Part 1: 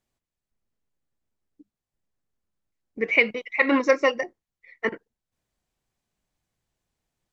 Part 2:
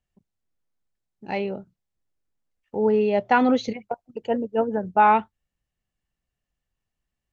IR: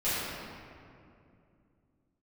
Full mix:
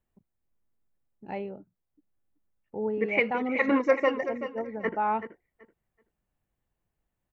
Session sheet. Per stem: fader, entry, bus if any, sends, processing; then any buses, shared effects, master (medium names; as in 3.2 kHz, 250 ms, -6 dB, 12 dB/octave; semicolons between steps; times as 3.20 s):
-2.5 dB, 0.00 s, no send, echo send -11 dB, none
-1.0 dB, 0.00 s, no send, no echo send, auto duck -10 dB, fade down 0.55 s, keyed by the first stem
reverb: none
echo: feedback delay 380 ms, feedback 19%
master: peaking EQ 5.2 kHz -13.5 dB 1.8 oct